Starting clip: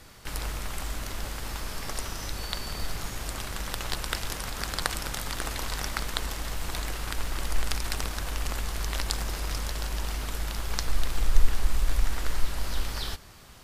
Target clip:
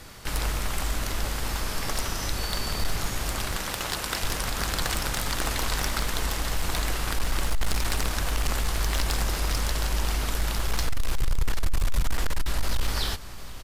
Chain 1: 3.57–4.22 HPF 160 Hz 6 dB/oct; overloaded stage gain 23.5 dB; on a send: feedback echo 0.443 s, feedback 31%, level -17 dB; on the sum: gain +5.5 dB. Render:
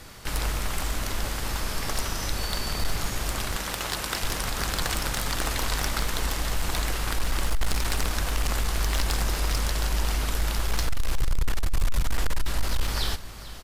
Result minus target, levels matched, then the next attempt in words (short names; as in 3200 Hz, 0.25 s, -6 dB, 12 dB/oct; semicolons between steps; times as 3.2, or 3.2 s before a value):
echo 0.307 s early
3.57–4.22 HPF 160 Hz 6 dB/oct; overloaded stage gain 23.5 dB; on a send: feedback echo 0.75 s, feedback 31%, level -17 dB; on the sum: gain +5.5 dB